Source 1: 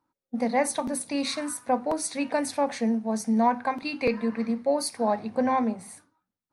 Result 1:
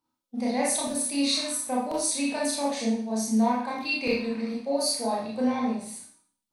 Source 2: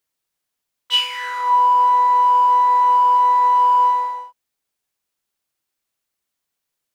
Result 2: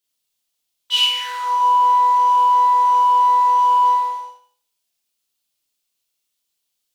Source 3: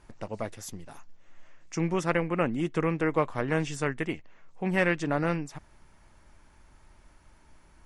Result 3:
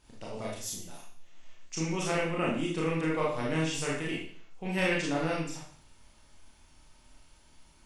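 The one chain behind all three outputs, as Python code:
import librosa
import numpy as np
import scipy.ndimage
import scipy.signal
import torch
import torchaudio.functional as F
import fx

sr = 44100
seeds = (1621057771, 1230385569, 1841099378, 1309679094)

y = fx.high_shelf_res(x, sr, hz=2400.0, db=7.0, q=1.5)
y = fx.rev_schroeder(y, sr, rt60_s=0.52, comb_ms=25, drr_db=-4.5)
y = y * 10.0 ** (-8.0 / 20.0)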